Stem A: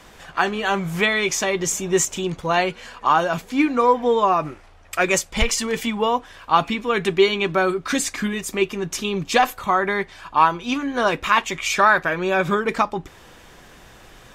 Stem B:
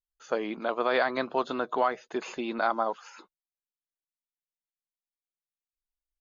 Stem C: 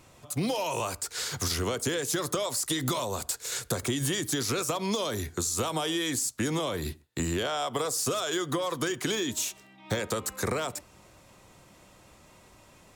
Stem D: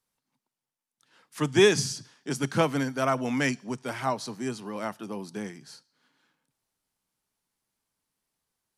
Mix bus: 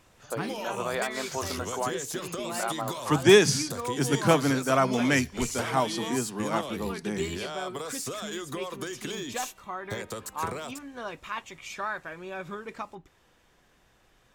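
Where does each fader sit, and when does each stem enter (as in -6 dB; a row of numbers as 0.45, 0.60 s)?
-17.5, -5.5, -6.5, +2.5 dB; 0.00, 0.00, 0.00, 1.70 s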